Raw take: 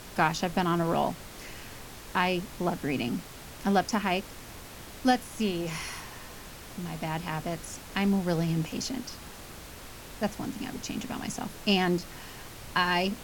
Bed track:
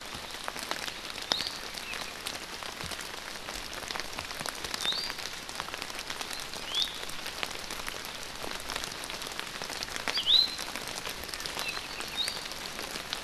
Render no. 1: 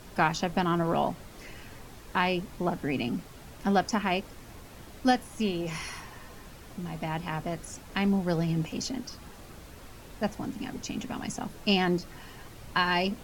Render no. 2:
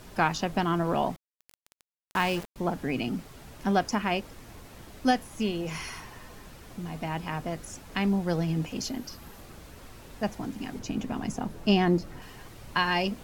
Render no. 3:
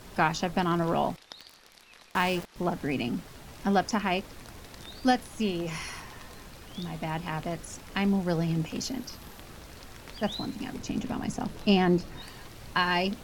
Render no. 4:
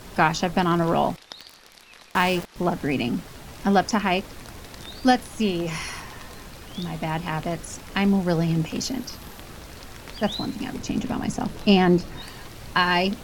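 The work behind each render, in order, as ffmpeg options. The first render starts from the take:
-af "afftdn=nr=7:nf=-45"
-filter_complex "[0:a]asettb=1/sr,asplit=3[a][b][c];[a]atrim=end=1.164[d];[b]atrim=start=1.16:end=2.56,asetpts=PTS-STARTPTS,afade=t=in:d=0.004:c=qsin,afade=t=out:st=1.396:d=0.004:c=qsin,aeval=exprs='val(0)*gte(abs(val(0)),0.02)':c=same[e];[c]atrim=start=2.556[f];[d][e]acrossfade=d=0.004:c1=hsin:c2=qsin[g];[g][f]acrossfade=d=0.004:c1=qsin:c2=hsin,asettb=1/sr,asplit=3[h][i][j];[h]atrim=end=8.814[k];[i]atrim=start=8.81:end=9.42,asetpts=PTS-STARTPTS,afade=t=in:d=0.004:c=qsin,afade=t=out:st=0.606:d=0.004:c=qsin,equalizer=f=12k:w=7.9:g=13.5[l];[j]atrim=start=9.416[m];[k][l]acrossfade=d=0.004:c1=hsin:c2=qsin[n];[n][m]acrossfade=d=0.004:c1=qsin:c2=hsin,asettb=1/sr,asplit=3[o][p][q];[o]atrim=end=10.794[r];[p]atrim=start=10.79:end=12.22,asetpts=PTS-STARTPTS,afade=t=in:d=0.004:c=qsin,afade=t=out:st=1.426:d=0.004:c=qsin,tiltshelf=f=1.2k:g=4[s];[q]atrim=start=12.216[t];[r][s]acrossfade=d=0.004:c1=hsin:c2=qsin[u];[u][t]acrossfade=d=0.004:c1=qsin:c2=hsin"
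-filter_complex "[1:a]volume=-17dB[a];[0:a][a]amix=inputs=2:normalize=0"
-af "volume=5.5dB"

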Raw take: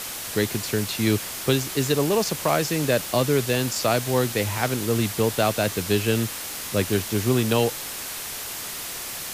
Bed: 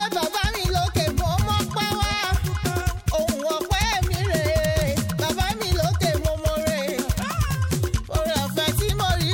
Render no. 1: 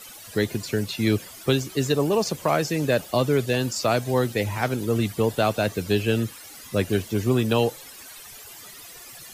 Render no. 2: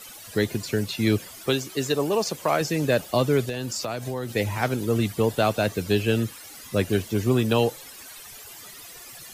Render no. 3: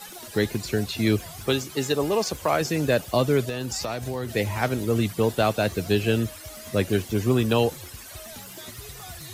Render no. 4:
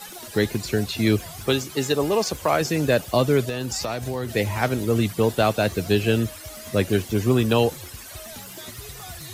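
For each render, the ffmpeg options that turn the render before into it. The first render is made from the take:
-af "afftdn=nr=15:nf=-33"
-filter_complex "[0:a]asettb=1/sr,asplit=3[a][b][c];[a]atrim=end=1.464[d];[b]atrim=start=1.46:end=2.61,asetpts=PTS-STARTPTS,afade=t=in:d=0.004:c=qsin,afade=t=out:st=1.146:d=0.004:c=qsin,lowshelf=f=180:g=-10[e];[c]atrim=start=2.606[f];[d][e]acrossfade=d=0.004:c1=hsin:c2=qsin[g];[g][f]acrossfade=d=0.004:c1=qsin:c2=hsin,asettb=1/sr,asplit=3[h][i][j];[h]atrim=end=3.494[k];[i]atrim=start=3.49:end=4.36,asetpts=PTS-STARTPTS,afade=t=in:d=0.004:c=qsin,afade=t=out:st=0.866:d=0.004:c=qsin,acompressor=threshold=-25dB:ratio=12:attack=3.2:release=140:knee=1:detection=peak[l];[j]atrim=start=4.356[m];[k][l]acrossfade=d=0.004:c1=hsin:c2=qsin[n];[n][m]acrossfade=d=0.004:c1=qsin:c2=hsin"
-filter_complex "[1:a]volume=-21dB[a];[0:a][a]amix=inputs=2:normalize=0"
-af "volume=2dB"

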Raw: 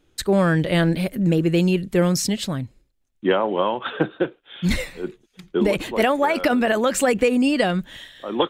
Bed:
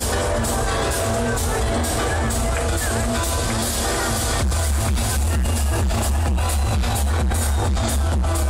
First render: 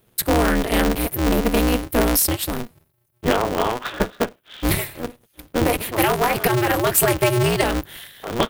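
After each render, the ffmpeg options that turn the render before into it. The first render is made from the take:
-af "aexciter=amount=5.8:drive=8.5:freq=9.6k,aeval=exprs='val(0)*sgn(sin(2*PI*120*n/s))':c=same"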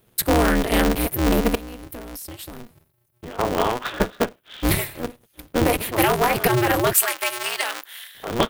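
-filter_complex "[0:a]asettb=1/sr,asplit=3[a][b][c];[a]atrim=end=1.554[d];[b]atrim=start=1.55:end=3.39,asetpts=PTS-STARTPTS,afade=t=in:d=0.004:c=qsin,afade=t=out:st=1.836:d=0.004:c=qsin,acompressor=threshold=-33dB:ratio=8:attack=3.2:release=140:knee=1:detection=peak[e];[c]atrim=start=3.386[f];[d][e]acrossfade=d=0.004:c1=hsin:c2=qsin[g];[g][f]acrossfade=d=0.004:c1=qsin:c2=hsin,asettb=1/sr,asplit=3[h][i][j];[h]atrim=end=6.934[k];[i]atrim=start=6.93:end=8.15,asetpts=PTS-STARTPTS,afade=t=in:d=0.004:c=qsin,afade=t=out:st=1.216:d=0.004:c=qsin,highpass=1.1k[l];[j]atrim=start=8.146[m];[k][l]acrossfade=d=0.004:c1=hsin:c2=qsin[n];[n][m]acrossfade=d=0.004:c1=qsin:c2=hsin"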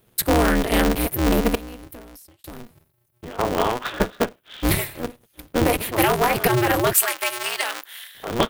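-filter_complex "[0:a]asplit=2[a][b];[a]atrim=end=2.44,asetpts=PTS-STARTPTS,afade=t=out:st=1.65:d=0.79[c];[b]atrim=start=2.44,asetpts=PTS-STARTPTS,afade=t=in:d=0.004:c=hsin[d];[c][d]concat=n=2:v=0:a=1"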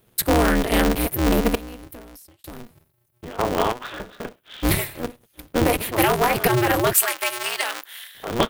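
-filter_complex "[0:a]asettb=1/sr,asplit=3[a][b][c];[a]atrim=end=3.724[d];[b]atrim=start=3.72:end=4.25,asetpts=PTS-STARTPTS,afade=t=in:d=0.004:c=qsin,afade=t=out:st=0.526:d=0.004:c=qsin,acompressor=threshold=-29dB:ratio=10:attack=3.2:release=140:knee=1:detection=peak[e];[c]atrim=start=4.246[f];[d][e]acrossfade=d=0.004:c1=hsin:c2=qsin[g];[g][f]acrossfade=d=0.004:c1=qsin:c2=hsin"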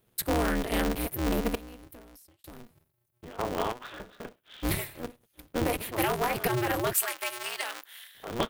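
-af "volume=-9dB"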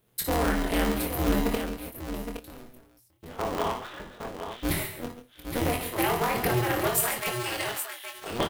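-filter_complex "[0:a]asplit=2[a][b];[b]adelay=24,volume=-6dB[c];[a][c]amix=inputs=2:normalize=0,aecho=1:1:57|58|135|143|817:0.299|0.299|0.211|0.178|0.398"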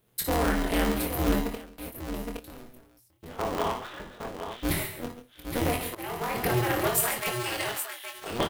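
-filter_complex "[0:a]asplit=3[a][b][c];[a]atrim=end=1.78,asetpts=PTS-STARTPTS,afade=t=out:st=1.34:d=0.44:c=qua:silence=0.133352[d];[b]atrim=start=1.78:end=5.95,asetpts=PTS-STARTPTS,afade=t=in:d=0.004:c=hsin:silence=0.133352,afade=t=out:st=4.166:d=0.004:c=hsin:silence=0.141254[e];[c]atrim=start=5.95,asetpts=PTS-STARTPTS,afade=t=in:d=0.6:silence=0.141254[f];[d][e][f]concat=n=3:v=0:a=1"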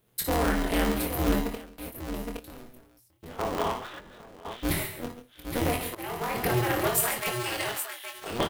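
-filter_complex "[0:a]asettb=1/sr,asplit=3[a][b][c];[a]atrim=end=3.994[d];[b]atrim=start=3.99:end=4.45,asetpts=PTS-STARTPTS,afade=t=in:d=0.004:c=qsin,afade=t=out:st=0.456:d=0.004:c=qsin,acompressor=threshold=-44dB:ratio=12:attack=3.2:release=140:knee=1:detection=peak[e];[c]atrim=start=4.446[f];[d][e]acrossfade=d=0.004:c1=hsin:c2=qsin[g];[g][f]acrossfade=d=0.004:c1=qsin:c2=hsin"

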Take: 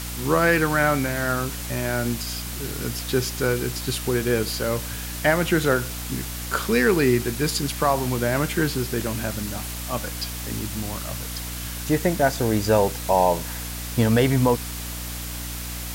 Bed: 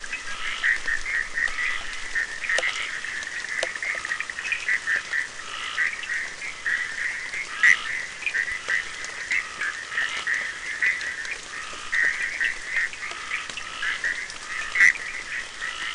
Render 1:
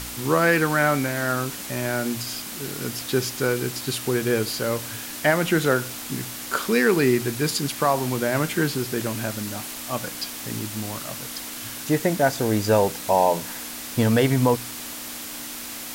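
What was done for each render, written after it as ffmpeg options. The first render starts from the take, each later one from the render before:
-af "bandreject=f=60:t=h:w=4,bandreject=f=120:t=h:w=4,bandreject=f=180:t=h:w=4"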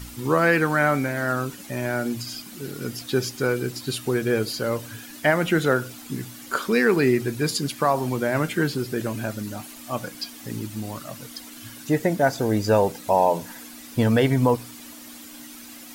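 -af "afftdn=nr=11:nf=-35"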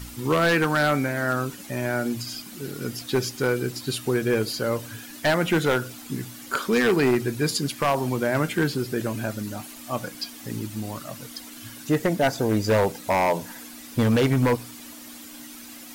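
-af "aeval=exprs='0.211*(abs(mod(val(0)/0.211+3,4)-2)-1)':c=same"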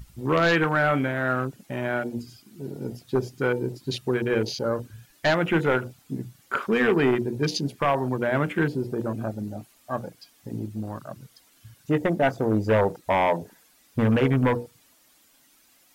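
-af "bandreject=f=60:t=h:w=6,bandreject=f=120:t=h:w=6,bandreject=f=180:t=h:w=6,bandreject=f=240:t=h:w=6,bandreject=f=300:t=h:w=6,bandreject=f=360:t=h:w=6,bandreject=f=420:t=h:w=6,bandreject=f=480:t=h:w=6,afwtdn=0.0224"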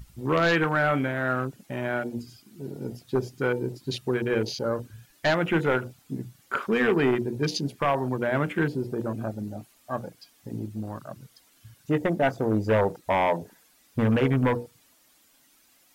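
-af "volume=-1.5dB"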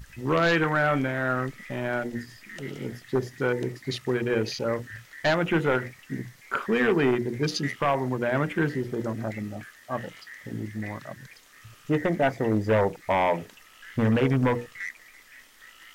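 -filter_complex "[1:a]volume=-19.5dB[a];[0:a][a]amix=inputs=2:normalize=0"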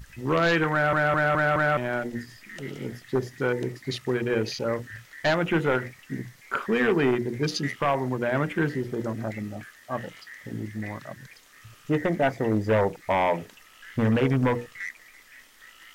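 -filter_complex "[0:a]asplit=6[a][b][c][d][e][f];[a]atrim=end=0.932[g];[b]atrim=start=0.718:end=0.932[h];[c]atrim=start=0.718:end=0.932[i];[d]atrim=start=0.718:end=0.932[j];[e]atrim=start=0.718:end=0.932[k];[f]atrim=start=1.768[l];[g][h]acrossfade=d=0.004:c1=hsin:c2=hsin[m];[m][i]acrossfade=d=0.004:c1=hsin:c2=hsin[n];[n][j]acrossfade=d=0.004:c1=hsin:c2=hsin[o];[o][k]acrossfade=d=0.004:c1=hsin:c2=hsin[p];[p][l]acrossfade=d=0.004:c1=hsin:c2=hsin"

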